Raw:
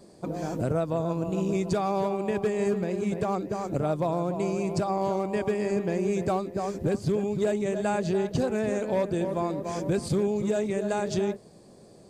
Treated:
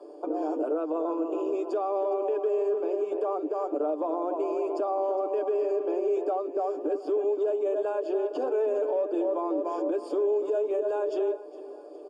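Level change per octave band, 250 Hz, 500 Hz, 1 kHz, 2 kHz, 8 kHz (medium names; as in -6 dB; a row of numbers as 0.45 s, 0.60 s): -4.5 dB, +1.5 dB, -1.0 dB, under -10 dB, under -15 dB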